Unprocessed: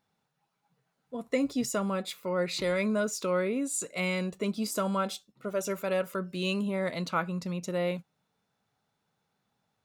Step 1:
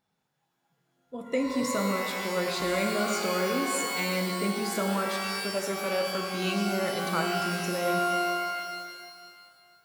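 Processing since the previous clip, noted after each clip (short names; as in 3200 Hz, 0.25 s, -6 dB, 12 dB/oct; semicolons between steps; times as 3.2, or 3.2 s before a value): shimmer reverb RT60 2.1 s, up +12 st, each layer -2 dB, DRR 3 dB; gain -1.5 dB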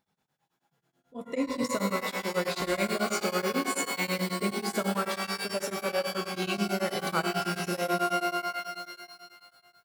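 beating tremolo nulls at 9.2 Hz; gain +1.5 dB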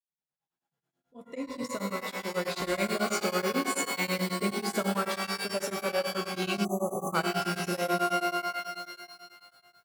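opening faded in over 3.08 s; spectral delete 6.65–7.15, 1300–6000 Hz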